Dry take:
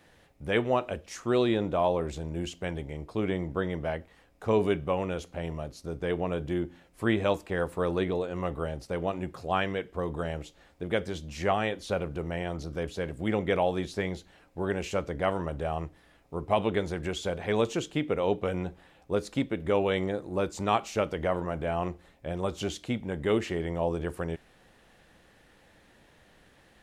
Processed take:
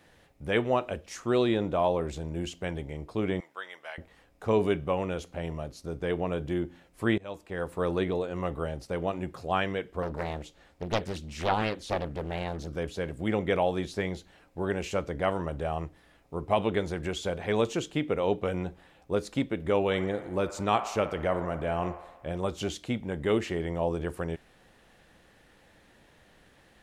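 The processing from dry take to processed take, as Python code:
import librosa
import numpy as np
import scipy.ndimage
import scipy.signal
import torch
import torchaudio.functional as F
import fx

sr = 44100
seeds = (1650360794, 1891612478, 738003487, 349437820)

y = fx.highpass(x, sr, hz=1300.0, slope=12, at=(3.4, 3.98))
y = fx.doppler_dist(y, sr, depth_ms=0.96, at=(10.02, 12.68))
y = fx.echo_wet_bandpass(y, sr, ms=60, feedback_pct=70, hz=1100.0, wet_db=-11, at=(19.85, 22.37))
y = fx.edit(y, sr, fx.fade_in_from(start_s=7.18, length_s=0.68, floor_db=-24.0), tone=tone)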